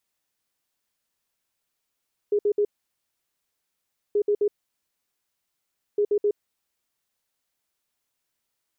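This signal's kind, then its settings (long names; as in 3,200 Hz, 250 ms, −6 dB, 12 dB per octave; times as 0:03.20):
beeps in groups sine 413 Hz, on 0.07 s, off 0.06 s, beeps 3, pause 1.50 s, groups 3, −18 dBFS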